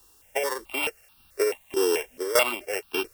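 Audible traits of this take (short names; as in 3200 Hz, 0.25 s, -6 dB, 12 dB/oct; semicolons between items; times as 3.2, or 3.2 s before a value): a buzz of ramps at a fixed pitch in blocks of 16 samples; tremolo saw down 1.7 Hz, depth 80%; a quantiser's noise floor 10-bit, dither triangular; notches that jump at a steady rate 4.6 Hz 590–2000 Hz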